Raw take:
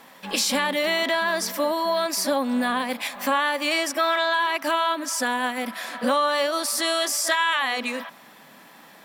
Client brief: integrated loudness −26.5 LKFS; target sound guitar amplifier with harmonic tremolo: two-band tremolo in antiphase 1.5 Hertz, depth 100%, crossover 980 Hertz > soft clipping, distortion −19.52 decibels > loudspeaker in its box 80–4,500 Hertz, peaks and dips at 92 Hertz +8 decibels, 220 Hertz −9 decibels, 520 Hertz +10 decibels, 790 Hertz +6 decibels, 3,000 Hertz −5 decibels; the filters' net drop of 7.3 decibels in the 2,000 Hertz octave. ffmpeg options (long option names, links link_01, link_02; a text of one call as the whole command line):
ffmpeg -i in.wav -filter_complex "[0:a]equalizer=frequency=2000:width_type=o:gain=-9,acrossover=split=980[link_01][link_02];[link_01]aeval=exprs='val(0)*(1-1/2+1/2*cos(2*PI*1.5*n/s))':channel_layout=same[link_03];[link_02]aeval=exprs='val(0)*(1-1/2-1/2*cos(2*PI*1.5*n/s))':channel_layout=same[link_04];[link_03][link_04]amix=inputs=2:normalize=0,asoftclip=threshold=-20.5dB,highpass=80,equalizer=frequency=92:width_type=q:width=4:gain=8,equalizer=frequency=220:width_type=q:width=4:gain=-9,equalizer=frequency=520:width_type=q:width=4:gain=10,equalizer=frequency=790:width_type=q:width=4:gain=6,equalizer=frequency=3000:width_type=q:width=4:gain=-5,lowpass=frequency=4500:width=0.5412,lowpass=frequency=4500:width=1.3066,volume=3dB" out.wav